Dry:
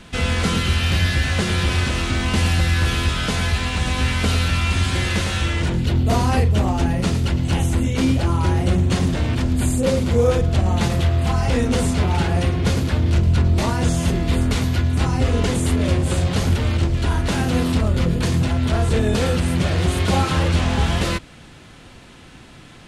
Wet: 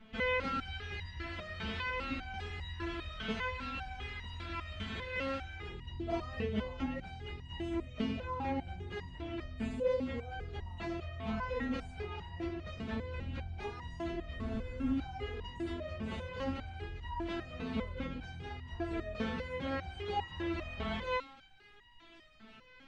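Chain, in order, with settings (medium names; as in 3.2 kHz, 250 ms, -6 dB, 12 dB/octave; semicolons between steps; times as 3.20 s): peaking EQ 2.4 kHz +6 dB 1.7 oct; vibrato 3.2 Hz 8 cents; tape spacing loss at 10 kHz 31 dB; on a send: feedback echo behind a high-pass 1108 ms, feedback 63%, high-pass 2.4 kHz, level -13 dB; on the sum: spectral freeze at 14.43 s, 0.52 s; resonator arpeggio 5 Hz 220–950 Hz; trim +1 dB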